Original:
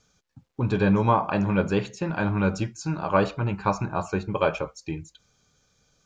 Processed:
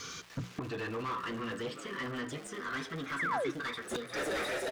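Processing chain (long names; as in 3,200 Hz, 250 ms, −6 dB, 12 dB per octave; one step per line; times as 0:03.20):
gliding playback speed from 96% → 161%
Chebyshev band-stop filter 490–1,000 Hz, order 5
parametric band 1,300 Hz −2.5 dB
mains-hum notches 60/120/180 Hz
notch comb filter 210 Hz
soft clipping −25 dBFS, distortion −11 dB
echo with shifted repeats 355 ms, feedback 62%, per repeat +77 Hz, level −18 dB
gate with flip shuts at −32 dBFS, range −30 dB
surface crackle 380 per second −66 dBFS
mid-hump overdrive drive 36 dB, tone 2,500 Hz, clips at −29.5 dBFS
sound drawn into the spectrogram fall, 0:03.19–0:03.51, 310–2,300 Hz −37 dBFS
level +4 dB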